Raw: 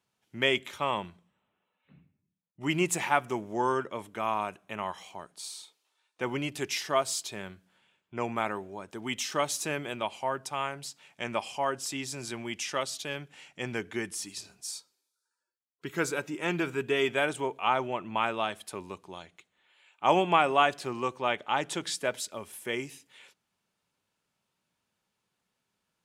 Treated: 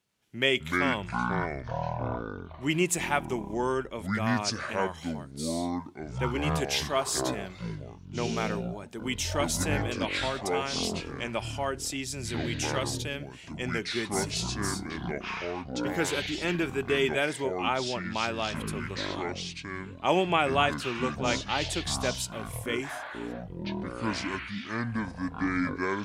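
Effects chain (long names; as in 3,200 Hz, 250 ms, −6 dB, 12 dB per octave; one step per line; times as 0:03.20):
parametric band 980 Hz −6.5 dB 1.2 octaves
delay with pitch and tempo change per echo 92 ms, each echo −7 semitones, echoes 3
level +2 dB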